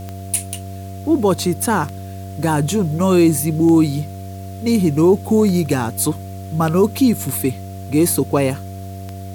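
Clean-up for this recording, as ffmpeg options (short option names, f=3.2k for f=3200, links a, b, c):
-af "adeclick=t=4,bandreject=f=95.2:t=h:w=4,bandreject=f=190.4:t=h:w=4,bandreject=f=285.6:t=h:w=4,bandreject=f=380.8:t=h:w=4,bandreject=f=476:t=h:w=4,bandreject=f=571.2:t=h:w=4,bandreject=f=690:w=30,agate=range=-21dB:threshold=-23dB"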